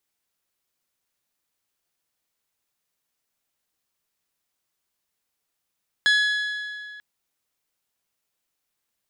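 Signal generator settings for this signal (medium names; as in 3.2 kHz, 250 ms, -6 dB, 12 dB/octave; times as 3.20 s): metal hit bell, length 0.94 s, lowest mode 1.69 kHz, modes 7, decay 2.34 s, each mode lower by 5.5 dB, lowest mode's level -15.5 dB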